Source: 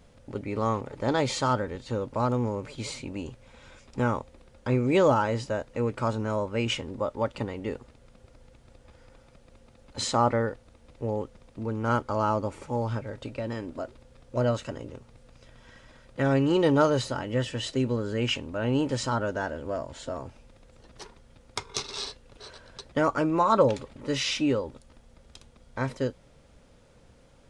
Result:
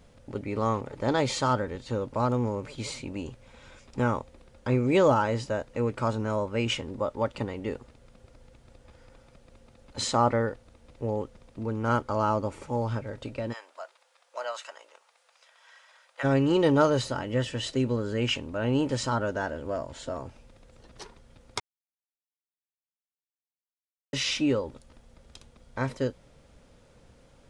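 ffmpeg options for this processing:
ffmpeg -i in.wav -filter_complex "[0:a]asplit=3[link_01][link_02][link_03];[link_01]afade=type=out:start_time=13.52:duration=0.02[link_04];[link_02]highpass=frequency=740:width=0.5412,highpass=frequency=740:width=1.3066,afade=type=in:start_time=13.52:duration=0.02,afade=type=out:start_time=16.23:duration=0.02[link_05];[link_03]afade=type=in:start_time=16.23:duration=0.02[link_06];[link_04][link_05][link_06]amix=inputs=3:normalize=0,asplit=3[link_07][link_08][link_09];[link_07]atrim=end=21.6,asetpts=PTS-STARTPTS,afade=type=out:start_time=21.596:duration=0.004:curve=hsin[link_10];[link_08]atrim=start=21.6:end=24.13,asetpts=PTS-STARTPTS,volume=0[link_11];[link_09]atrim=start=24.13,asetpts=PTS-STARTPTS,afade=type=in:duration=0.004:curve=hsin[link_12];[link_10][link_11][link_12]concat=n=3:v=0:a=1" out.wav

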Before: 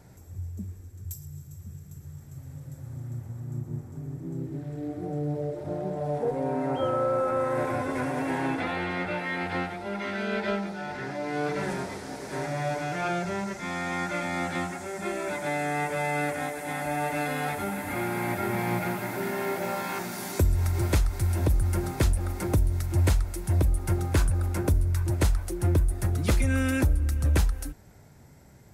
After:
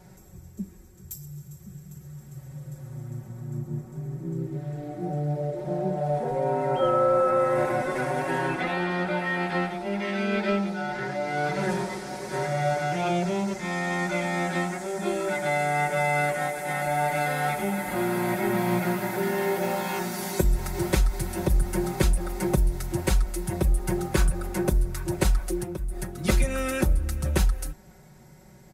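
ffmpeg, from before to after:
ffmpeg -i in.wav -filter_complex "[0:a]asettb=1/sr,asplit=3[link_01][link_02][link_03];[link_01]atrim=end=25.584[link_04];[link_02]atrim=start=25.58:end=26.24,asetpts=PTS-STARTPTS,afade=type=in:duration=0.004:curve=qsin,afade=type=out:start_time=0.656:duration=0.004:curve=qsin,acompressor=threshold=-29dB:ratio=6:attack=3.2:release=140:knee=1:detection=peak[link_05];[link_03]atrim=start=26.236[link_06];[link_04][link_05]acrossfade=duration=0.004:curve1=hsin:curve2=qsin[link_07];[link_07][link_06]acrossfade=duration=0.004:curve1=qsin:curve2=hsin,aecho=1:1:5.4:0.94" out.wav

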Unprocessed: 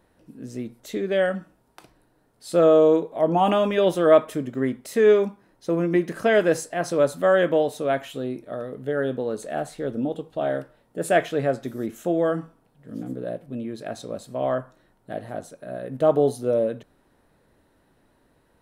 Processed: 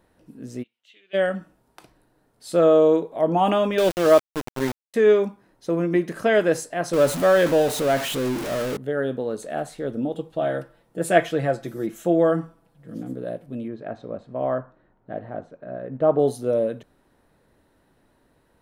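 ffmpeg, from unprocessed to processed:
ffmpeg -i in.wav -filter_complex "[0:a]asplit=3[link_01][link_02][link_03];[link_01]afade=type=out:start_time=0.62:duration=0.02[link_04];[link_02]bandpass=frequency=2900:width_type=q:width=8,afade=type=in:start_time=0.62:duration=0.02,afade=type=out:start_time=1.13:duration=0.02[link_05];[link_03]afade=type=in:start_time=1.13:duration=0.02[link_06];[link_04][link_05][link_06]amix=inputs=3:normalize=0,asettb=1/sr,asplit=3[link_07][link_08][link_09];[link_07]atrim=end=3.784[link_10];[link_08]atrim=start=3.78:end=4.94,asetpts=PTS-STARTPTS,afade=type=in:duration=0.004:curve=qsin,afade=type=out:start_time=1.156:duration=0.004:curve=qsin,aeval=exprs='val(0)*gte(abs(val(0)),0.0668)':channel_layout=same[link_11];[link_09]atrim=start=4.936[link_12];[link_10][link_11]acrossfade=duration=0.004:curve1=hsin:curve2=qsin[link_13];[link_13][link_12]acrossfade=duration=0.004:curve1=qsin:curve2=hsin,asettb=1/sr,asplit=3[link_14][link_15][link_16];[link_14]atrim=end=6.934[link_17];[link_15]atrim=start=6.93:end=8.77,asetpts=PTS-STARTPTS,afade=type=in:duration=0.004:curve=qsin,afade=type=out:start_time=1.836:duration=0.004:curve=qsin,aeval=exprs='val(0)+0.5*0.0631*sgn(val(0))':channel_layout=same[link_18];[link_16]atrim=start=8.766[link_19];[link_17][link_18]acrossfade=duration=0.004:curve1=hsin:curve2=qsin[link_20];[link_20][link_19]acrossfade=duration=0.004:curve1=qsin:curve2=hsin,asettb=1/sr,asplit=3[link_21][link_22][link_23];[link_21]atrim=end=10.164[link_24];[link_22]atrim=start=10.16:end=12.98,asetpts=PTS-STARTPTS,afade=type=in:duration=0.004:curve=qsin,afade=type=out:start_time=2.816:duration=0.004:curve=qsin,aecho=1:1:6:0.58,atrim=end_sample=124362[link_25];[link_23]atrim=start=12.976[link_26];[link_24][link_25]acrossfade=duration=0.004:curve1=hsin:curve2=qsin[link_27];[link_27][link_26]acrossfade=duration=0.004:curve1=qsin:curve2=hsin,asettb=1/sr,asplit=3[link_28][link_29][link_30];[link_28]atrim=end=13.684[link_31];[link_29]atrim=start=13.68:end=16.19,asetpts=PTS-STARTPTS,afade=type=in:duration=0.004:curve=qsin,afade=type=out:start_time=2.506:duration=0.004:curve=qsin,lowpass=1800[link_32];[link_30]atrim=start=16.186[link_33];[link_31][link_32]acrossfade=duration=0.004:curve1=hsin:curve2=qsin[link_34];[link_34][link_33]acrossfade=duration=0.004:curve1=qsin:curve2=hsin" out.wav

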